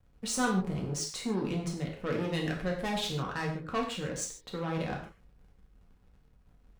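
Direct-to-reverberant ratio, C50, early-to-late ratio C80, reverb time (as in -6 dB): -1.0 dB, 6.0 dB, 9.5 dB, no single decay rate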